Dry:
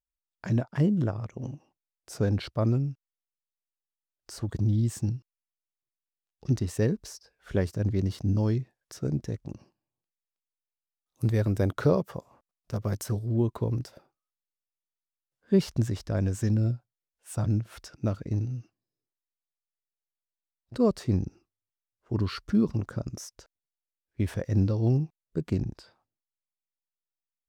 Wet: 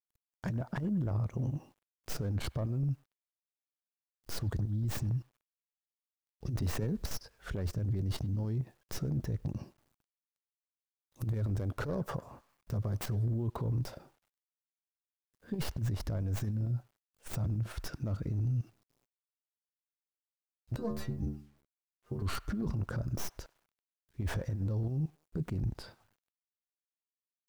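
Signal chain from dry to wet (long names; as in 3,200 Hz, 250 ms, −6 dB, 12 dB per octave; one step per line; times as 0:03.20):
stylus tracing distortion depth 0.23 ms
low-shelf EQ 240 Hz +11.5 dB
square-wave tremolo 4.5 Hz, depth 60%, duty 75%
compressor whose output falls as the input rises −22 dBFS, ratio −0.5
dynamic equaliser 830 Hz, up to +5 dB, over −42 dBFS, Q 0.75
0:20.76–0:22.22: stiff-string resonator 69 Hz, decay 0.46 s, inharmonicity 0.008
brickwall limiter −26.5 dBFS, peak gain reduction 18 dB
feedback echo with a band-pass in the loop 99 ms, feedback 56%, band-pass 1,200 Hz, level −21 dB
bit-depth reduction 12 bits, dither none
0:06.62–0:07.09: multiband upward and downward compressor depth 70%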